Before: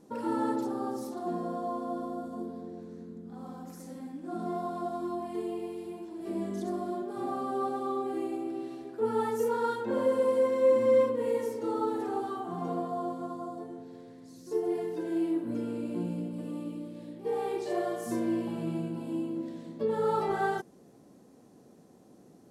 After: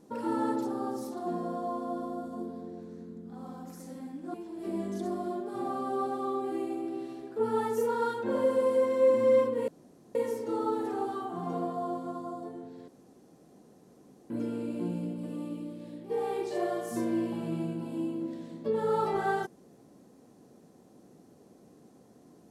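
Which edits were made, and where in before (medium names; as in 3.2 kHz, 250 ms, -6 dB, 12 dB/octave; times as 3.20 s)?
4.34–5.96 s: delete
11.30 s: insert room tone 0.47 s
14.03–15.45 s: room tone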